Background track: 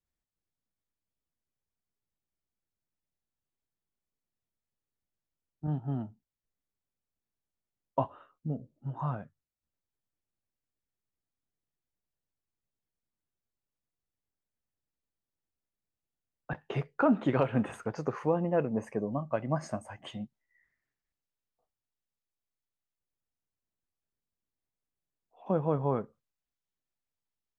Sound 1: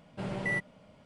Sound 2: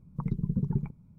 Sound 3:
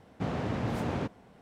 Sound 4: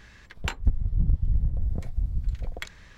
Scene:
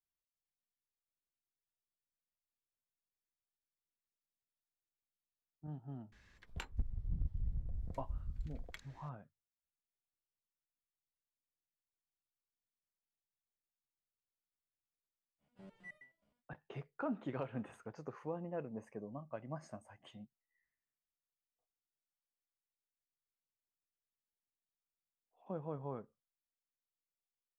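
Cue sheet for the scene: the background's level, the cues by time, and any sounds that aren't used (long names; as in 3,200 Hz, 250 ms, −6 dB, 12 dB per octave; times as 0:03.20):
background track −14 dB
0:06.12: mix in 4 −15 dB
0:15.38: mix in 1 −14 dB, fades 0.05 s + step-sequenced resonator 9.5 Hz 71–610 Hz
not used: 2, 3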